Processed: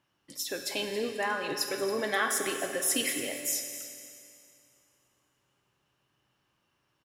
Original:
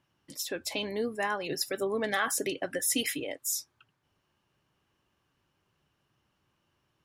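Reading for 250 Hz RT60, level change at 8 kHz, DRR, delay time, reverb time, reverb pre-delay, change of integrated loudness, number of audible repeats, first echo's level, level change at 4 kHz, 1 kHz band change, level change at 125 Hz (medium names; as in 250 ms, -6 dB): 2.5 s, +1.5 dB, 4.0 dB, 276 ms, 2.5 s, 7 ms, +0.5 dB, 1, -15.0 dB, +1.0 dB, +1.0 dB, -3.0 dB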